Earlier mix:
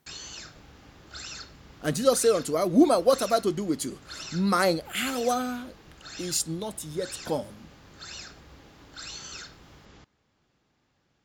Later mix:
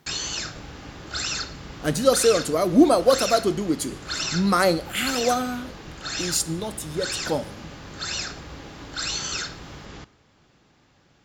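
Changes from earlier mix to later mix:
background +8.5 dB; reverb: on, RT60 0.65 s

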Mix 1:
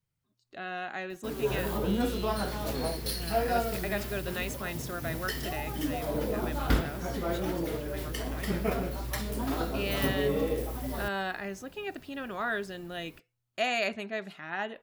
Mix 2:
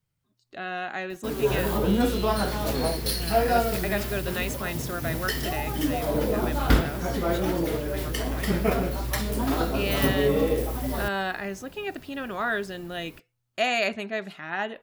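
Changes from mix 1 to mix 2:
speech +4.5 dB; background +6.0 dB

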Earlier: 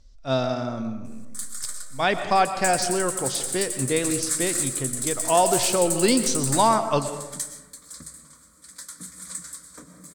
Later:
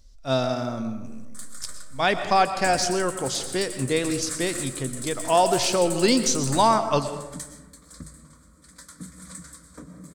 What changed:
speech: remove air absorption 56 m; background: add tilt -2.5 dB/oct

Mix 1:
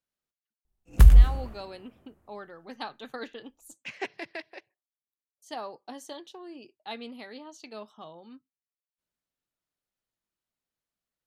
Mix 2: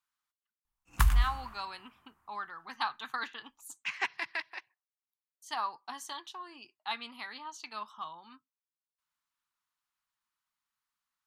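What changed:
speech +3.0 dB; master: add resonant low shelf 740 Hz -11.5 dB, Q 3

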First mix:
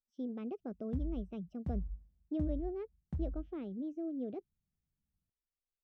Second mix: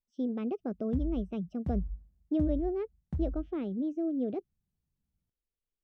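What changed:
speech +7.5 dB; background +4.0 dB

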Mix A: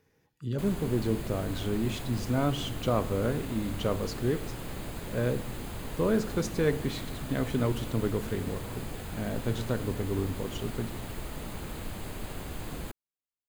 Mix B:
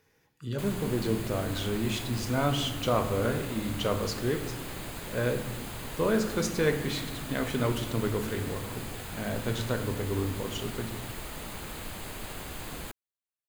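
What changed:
speech: send +9.0 dB; master: add tilt shelf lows -4 dB, about 630 Hz

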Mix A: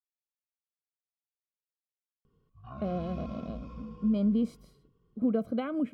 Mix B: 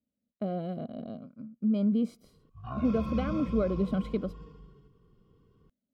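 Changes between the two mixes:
speech: entry -2.40 s; background +7.0 dB

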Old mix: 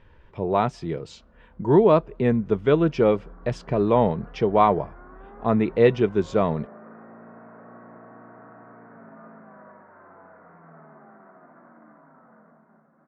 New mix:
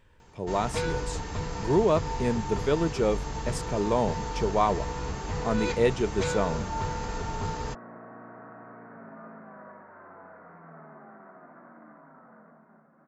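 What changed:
speech -7.0 dB; first sound: unmuted; master: remove air absorption 220 m

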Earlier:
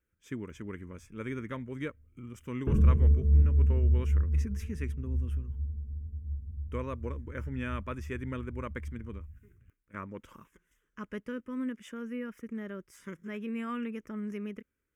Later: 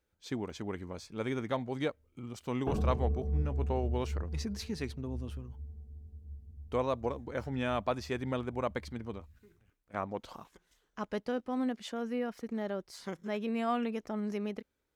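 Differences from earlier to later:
background: add low shelf 280 Hz -11 dB; master: remove fixed phaser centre 1800 Hz, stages 4

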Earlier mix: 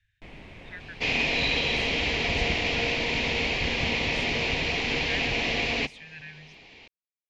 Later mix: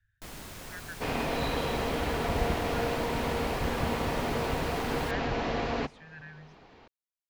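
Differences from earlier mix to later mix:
first sound: remove LPF 1300 Hz 12 dB/oct; master: add resonant high shelf 1800 Hz -9 dB, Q 3

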